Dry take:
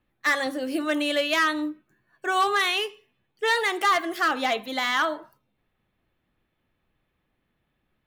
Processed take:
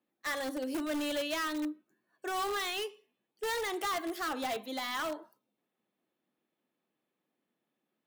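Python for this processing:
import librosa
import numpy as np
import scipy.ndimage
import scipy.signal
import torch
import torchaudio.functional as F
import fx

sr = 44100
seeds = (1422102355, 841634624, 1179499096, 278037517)

p1 = scipy.signal.sosfilt(scipy.signal.butter(4, 210.0, 'highpass', fs=sr, output='sos'), x)
p2 = fx.peak_eq(p1, sr, hz=1900.0, db=-7.0, octaves=2.0)
p3 = (np.mod(10.0 ** (23.5 / 20.0) * p2 + 1.0, 2.0) - 1.0) / 10.0 ** (23.5 / 20.0)
p4 = p2 + (p3 * librosa.db_to_amplitude(-7.0))
y = p4 * librosa.db_to_amplitude(-8.0)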